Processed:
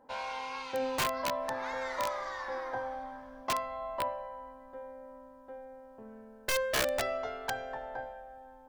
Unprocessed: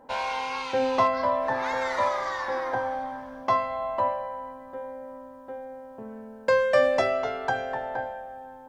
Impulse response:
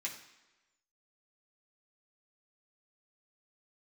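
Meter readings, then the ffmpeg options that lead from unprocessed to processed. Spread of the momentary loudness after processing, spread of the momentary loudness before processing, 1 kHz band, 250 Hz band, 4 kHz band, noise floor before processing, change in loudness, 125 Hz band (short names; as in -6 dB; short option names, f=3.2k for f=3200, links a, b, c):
18 LU, 18 LU, -9.0 dB, -8.5 dB, -0.5 dB, -46 dBFS, -8.0 dB, -6.5 dB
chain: -filter_complex "[0:a]asubboost=boost=4.5:cutoff=57,asplit=2[a][b];[1:a]atrim=start_sample=2205,afade=t=out:st=0.17:d=0.01,atrim=end_sample=7938,asetrate=27783,aresample=44100[c];[b][c]afir=irnorm=-1:irlink=0,volume=-16.5dB[d];[a][d]amix=inputs=2:normalize=0,aeval=exprs='(mod(5.31*val(0)+1,2)-1)/5.31':c=same,volume=-9dB"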